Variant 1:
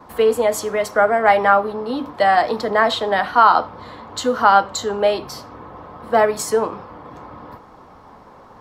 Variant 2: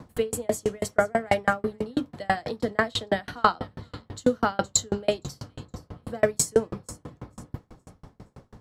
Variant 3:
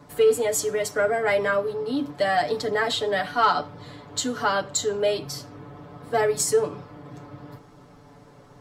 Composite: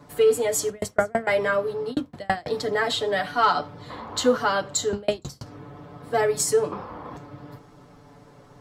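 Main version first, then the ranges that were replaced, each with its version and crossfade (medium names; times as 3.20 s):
3
0.70–1.27 s: from 2
1.92–2.50 s: from 2, crossfade 0.06 s
3.90–4.37 s: from 1
4.93–5.46 s: from 2
6.72–7.17 s: from 1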